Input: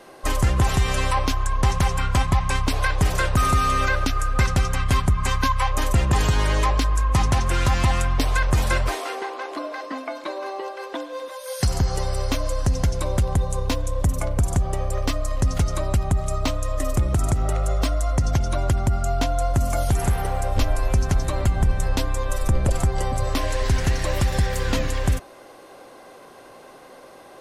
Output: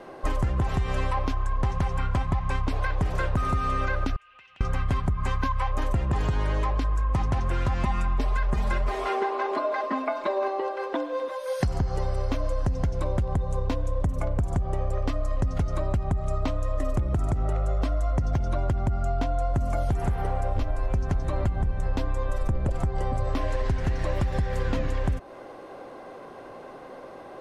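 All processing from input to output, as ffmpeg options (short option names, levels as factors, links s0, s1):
-filter_complex "[0:a]asettb=1/sr,asplit=3[s0][s1][s2];[s0]atrim=end=4.164[s3];[s1]atrim=start=4.16:end=4.61,asetpts=PTS-STARTPTS,afade=t=in:d=0.004:c=qsin,afade=t=out:st=0.446:d=0.004:c=qsin,bandpass=f=2800:t=q:w=7.3,acompressor=threshold=0.00355:ratio=4:attack=3.2:release=140:knee=1:detection=peak[s4];[s2]atrim=start=4.606[s5];[s3][s4]acrossfade=d=0.004:c1=hsin:c2=qsin[s6];[s6][s5]acrossfade=d=0.004:c1=qsin:c2=hsin,asettb=1/sr,asplit=3[s7][s8][s9];[s7]atrim=end=7.834[s10];[s8]atrim=start=7.83:end=10.48,asetpts=PTS-STARTPTS,afade=t=in:d=0.004:c=qsin,afade=t=out:st=2.646:d=0.004:c=qsin,aecho=1:1:4.9:0.82,atrim=end_sample=116865,aecho=1:1:163:0.0944,atrim=end_sample=116865[s11];[s9]atrim=start=10.476[s12];[s10][s11]acrossfade=d=0.004:c1=hsin:c2=qsin[s13];[s13][s12]acrossfade=d=0.004:c1=qsin:c2=hsin,lowpass=f=1300:p=1,acompressor=threshold=0.0501:ratio=6,volume=1.58"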